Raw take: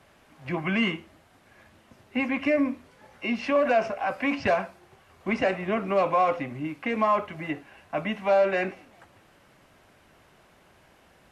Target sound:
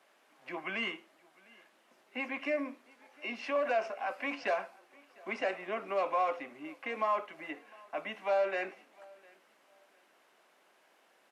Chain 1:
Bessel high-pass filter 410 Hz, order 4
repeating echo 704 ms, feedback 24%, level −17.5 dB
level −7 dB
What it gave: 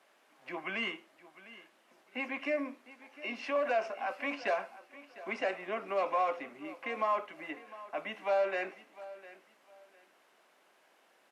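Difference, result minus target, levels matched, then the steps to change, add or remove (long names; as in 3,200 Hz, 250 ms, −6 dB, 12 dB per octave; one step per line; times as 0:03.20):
echo-to-direct +8 dB
change: repeating echo 704 ms, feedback 24%, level −25.5 dB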